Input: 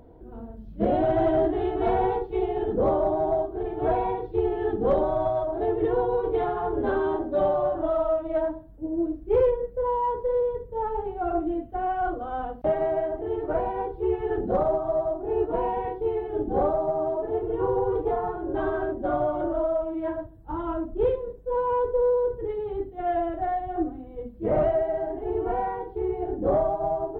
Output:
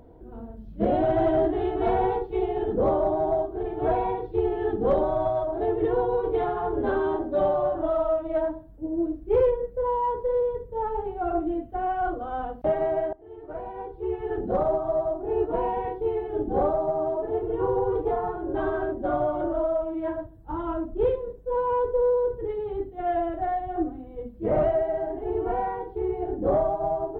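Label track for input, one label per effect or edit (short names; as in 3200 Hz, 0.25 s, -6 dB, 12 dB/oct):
13.130000	14.730000	fade in linear, from -22 dB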